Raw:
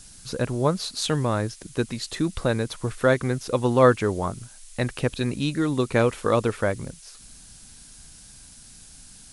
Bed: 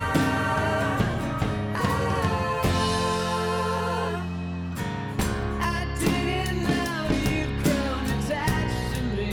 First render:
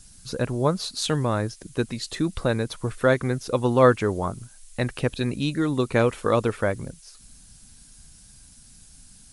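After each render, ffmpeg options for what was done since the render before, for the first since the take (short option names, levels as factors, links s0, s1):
-af "afftdn=nr=6:nf=-48"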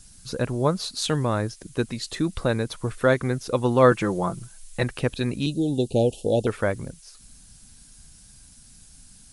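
-filter_complex "[0:a]asettb=1/sr,asplit=3[s0][s1][s2];[s0]atrim=end=3.914[s3];[s1]atrim=start=3.91:end=4.83,asetpts=PTS-STARTPTS,afade=t=in:d=0.004:c=qsin,afade=t=out:st=0.916:d=0.004:c=qsin,aecho=1:1:5.9:0.72,atrim=end_sample=40572[s4];[s2]atrim=start=4.826[s5];[s3][s4]acrossfade=d=0.004:c1=hsin:c2=qsin[s6];[s6][s5]acrossfade=d=0.004:c1=qsin:c2=hsin,asettb=1/sr,asplit=3[s7][s8][s9];[s7]atrim=end=5.464[s10];[s8]atrim=start=5.46:end=6.47,asetpts=PTS-STARTPTS,afade=t=in:d=0.004:c=qsin,afade=t=out:st=1.006:d=0.004:c=qsin,asuperstop=centerf=1500:order=20:qfactor=0.8[s11];[s9]atrim=start=6.466[s12];[s10][s11]acrossfade=d=0.004:c1=hsin:c2=qsin[s13];[s13][s12]acrossfade=d=0.004:c1=qsin:c2=hsin"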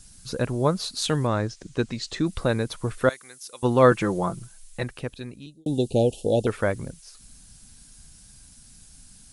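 -filter_complex "[0:a]asettb=1/sr,asplit=3[s0][s1][s2];[s0]atrim=end=1.274[s3];[s1]atrim=start=1.27:end=2.26,asetpts=PTS-STARTPTS,afade=t=in:d=0.004:c=qsin,afade=t=out:st=0.986:d=0.004:c=qsin,lowpass=f=7600:w=0.5412,lowpass=f=7600:w=1.3066[s4];[s2]atrim=start=2.256[s5];[s3][s4]acrossfade=d=0.004:c1=hsin:c2=qsin[s6];[s6][s5]acrossfade=d=0.004:c1=qsin:c2=hsin,asettb=1/sr,asplit=3[s7][s8][s9];[s7]atrim=end=3.094[s10];[s8]atrim=start=3.09:end=3.63,asetpts=PTS-STARTPTS,afade=t=in:d=0.004:c=qsin,afade=t=out:st=0.536:d=0.004:c=qsin,aderivative[s11];[s9]atrim=start=3.626[s12];[s10][s11]acrossfade=d=0.004:c1=hsin:c2=qsin[s13];[s13][s12]acrossfade=d=0.004:c1=qsin:c2=hsin,asplit=2[s14][s15];[s14]atrim=end=5.66,asetpts=PTS-STARTPTS,afade=t=out:st=4.19:d=1.47[s16];[s15]atrim=start=5.66,asetpts=PTS-STARTPTS,afade=t=in:d=0.004:c=hsin[s17];[s16][s17]concat=n=2:v=0:a=1"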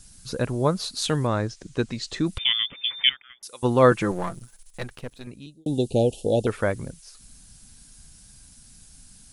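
-filter_complex "[0:a]asettb=1/sr,asplit=3[s0][s1][s2];[s0]atrim=end=2.384[s3];[s1]atrim=start=2.38:end=3.43,asetpts=PTS-STARTPTS,afade=t=in:d=0.004:c=qsin,afade=t=out:st=1.046:d=0.004:c=qsin,lowpass=f=3100:t=q:w=0.5098,lowpass=f=3100:t=q:w=0.6013,lowpass=f=3100:t=q:w=0.9,lowpass=f=3100:t=q:w=2.563,afreqshift=-3600[s4];[s2]atrim=start=3.426[s5];[s3][s4]acrossfade=d=0.004:c1=hsin:c2=qsin[s6];[s6][s5]acrossfade=d=0.004:c1=qsin:c2=hsin,asettb=1/sr,asplit=3[s7][s8][s9];[s7]atrim=end=4.114[s10];[s8]atrim=start=4.11:end=5.27,asetpts=PTS-STARTPTS,afade=t=in:d=0.004:c=qsin,afade=t=out:st=1.156:d=0.004:c=qsin,aeval=exprs='if(lt(val(0),0),0.251*val(0),val(0))':c=same[s11];[s9]atrim=start=5.266[s12];[s10][s11]acrossfade=d=0.004:c1=hsin:c2=qsin[s13];[s13][s12]acrossfade=d=0.004:c1=qsin:c2=hsin"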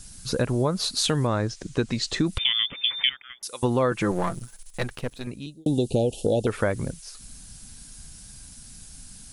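-filter_complex "[0:a]asplit=2[s0][s1];[s1]alimiter=limit=0.158:level=0:latency=1,volume=0.841[s2];[s0][s2]amix=inputs=2:normalize=0,acompressor=threshold=0.112:ratio=6"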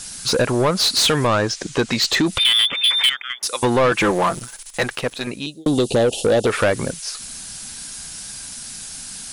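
-filter_complex "[0:a]asplit=2[s0][s1];[s1]highpass=f=720:p=1,volume=12.6,asoftclip=type=tanh:threshold=0.447[s2];[s0][s2]amix=inputs=2:normalize=0,lowpass=f=6500:p=1,volume=0.501"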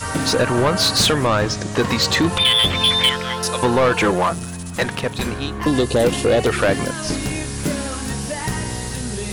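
-filter_complex "[1:a]volume=1[s0];[0:a][s0]amix=inputs=2:normalize=0"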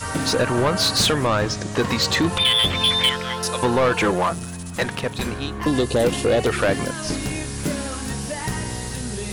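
-af "volume=0.75"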